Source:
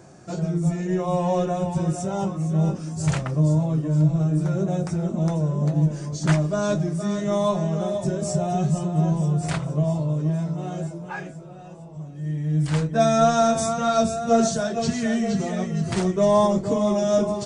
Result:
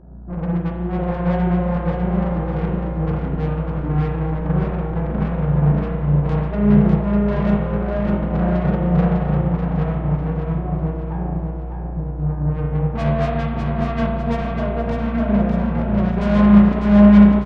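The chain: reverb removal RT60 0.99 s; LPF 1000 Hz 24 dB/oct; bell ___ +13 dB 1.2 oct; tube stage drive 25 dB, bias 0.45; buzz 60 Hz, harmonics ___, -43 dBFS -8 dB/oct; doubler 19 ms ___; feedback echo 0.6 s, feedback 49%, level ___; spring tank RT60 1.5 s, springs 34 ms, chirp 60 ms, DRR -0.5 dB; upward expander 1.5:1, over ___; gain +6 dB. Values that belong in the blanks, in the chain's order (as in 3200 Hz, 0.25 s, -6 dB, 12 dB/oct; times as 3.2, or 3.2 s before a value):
190 Hz, 28, -10.5 dB, -4 dB, -35 dBFS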